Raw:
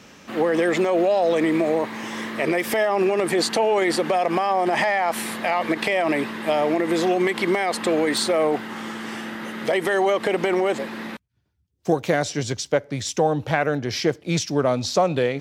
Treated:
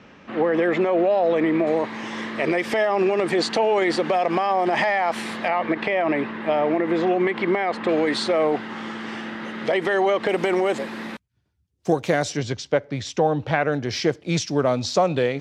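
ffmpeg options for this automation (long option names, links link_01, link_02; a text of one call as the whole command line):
ffmpeg -i in.wav -af "asetnsamples=nb_out_samples=441:pad=0,asendcmd='1.67 lowpass f 5400;5.48 lowpass f 2500;7.89 lowpass f 4700;10.29 lowpass f 11000;12.37 lowpass f 4400;13.72 lowpass f 7500',lowpass=2700" out.wav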